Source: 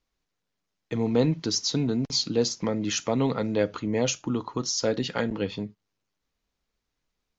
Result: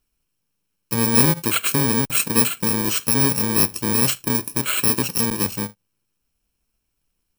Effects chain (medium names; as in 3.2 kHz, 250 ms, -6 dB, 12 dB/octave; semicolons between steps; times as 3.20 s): bit-reversed sample order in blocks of 64 samples; trim +6.5 dB